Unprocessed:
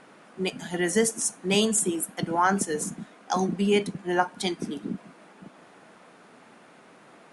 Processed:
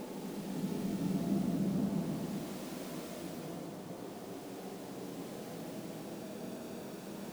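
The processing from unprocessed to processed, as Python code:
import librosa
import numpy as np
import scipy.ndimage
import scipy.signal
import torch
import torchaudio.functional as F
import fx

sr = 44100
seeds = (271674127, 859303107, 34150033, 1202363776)

y = fx.env_lowpass(x, sr, base_hz=380.0, full_db=-20.5)
y = fx.dmg_crackle(y, sr, seeds[0], per_s=19.0, level_db=-37.0)
y = fx.paulstretch(y, sr, seeds[1], factor=11.0, window_s=0.25, from_s=5.32)
y = y * 10.0 ** (13.0 / 20.0)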